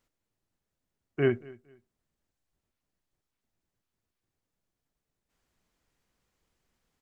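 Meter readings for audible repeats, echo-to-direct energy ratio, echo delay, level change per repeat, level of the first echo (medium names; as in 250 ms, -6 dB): 2, -22.0 dB, 230 ms, -11.5 dB, -22.5 dB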